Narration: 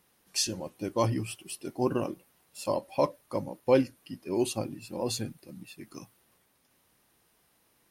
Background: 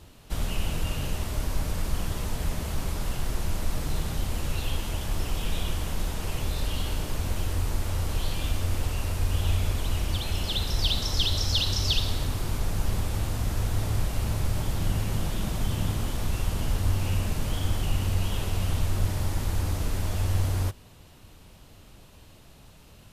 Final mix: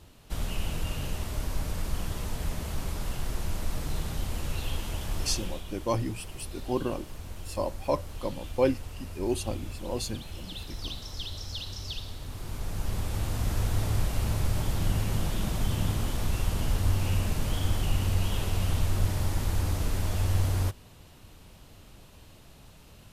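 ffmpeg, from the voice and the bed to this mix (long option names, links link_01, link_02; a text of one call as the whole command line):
ffmpeg -i stem1.wav -i stem2.wav -filter_complex "[0:a]adelay=4900,volume=-1.5dB[link_01];[1:a]volume=8.5dB,afade=type=out:start_time=5.27:duration=0.36:silence=0.354813,afade=type=in:start_time=12.2:duration=1.31:silence=0.266073[link_02];[link_01][link_02]amix=inputs=2:normalize=0" out.wav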